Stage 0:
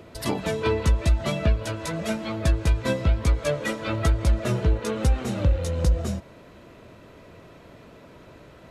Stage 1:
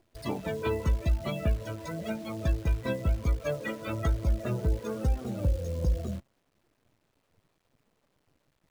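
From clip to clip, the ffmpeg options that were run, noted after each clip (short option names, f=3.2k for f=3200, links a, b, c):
-af "afftdn=nr=19:nf=-32,acrusher=bits=8:dc=4:mix=0:aa=0.000001,volume=-6dB"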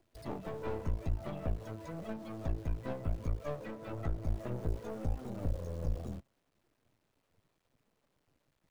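-filter_complex "[0:a]acrossover=split=250|1300[a][b][c];[c]acompressor=threshold=-53dB:ratio=6[d];[a][b][d]amix=inputs=3:normalize=0,aeval=exprs='clip(val(0),-1,0.00891)':c=same,volume=-4.5dB"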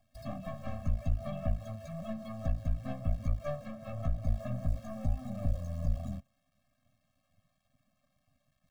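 -af "afftfilt=real='re*eq(mod(floor(b*sr/1024/260),2),0)':imag='im*eq(mod(floor(b*sr/1024/260),2),0)':win_size=1024:overlap=0.75,volume=3.5dB"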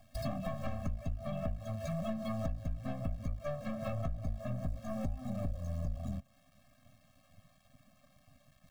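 -filter_complex "[0:a]asplit=2[a][b];[b]asoftclip=type=tanh:threshold=-28dB,volume=-4.5dB[c];[a][c]amix=inputs=2:normalize=0,acompressor=threshold=-40dB:ratio=6,volume=6.5dB"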